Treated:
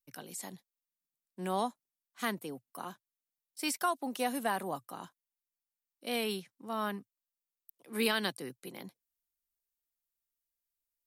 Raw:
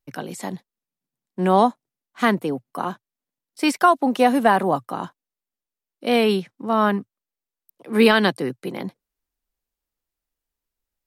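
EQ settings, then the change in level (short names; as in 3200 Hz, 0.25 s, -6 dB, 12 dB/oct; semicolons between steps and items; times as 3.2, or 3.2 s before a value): pre-emphasis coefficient 0.8; -3.5 dB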